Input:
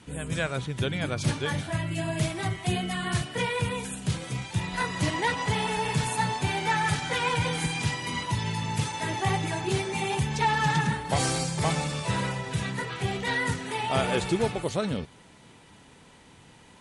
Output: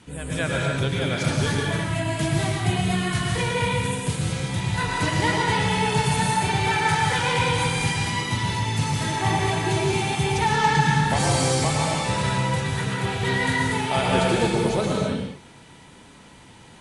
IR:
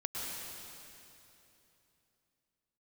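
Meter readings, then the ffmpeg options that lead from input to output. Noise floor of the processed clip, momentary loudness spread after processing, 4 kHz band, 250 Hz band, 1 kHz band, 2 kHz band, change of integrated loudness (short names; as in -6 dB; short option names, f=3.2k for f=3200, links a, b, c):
-48 dBFS, 5 LU, +5.5 dB, +5.5 dB, +5.5 dB, +5.0 dB, +5.5 dB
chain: -filter_complex "[1:a]atrim=start_sample=2205,afade=t=out:st=0.4:d=0.01,atrim=end_sample=18081[a];[0:a][a]afir=irnorm=-1:irlink=0,volume=3.5dB"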